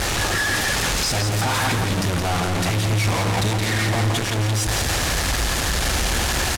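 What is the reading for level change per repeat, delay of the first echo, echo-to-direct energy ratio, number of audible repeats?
-7.0 dB, 0.17 s, -5.0 dB, 2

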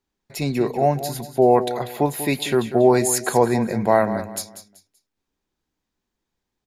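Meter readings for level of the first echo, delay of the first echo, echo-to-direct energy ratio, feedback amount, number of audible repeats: -12.0 dB, 0.191 s, -11.5 dB, 29%, 3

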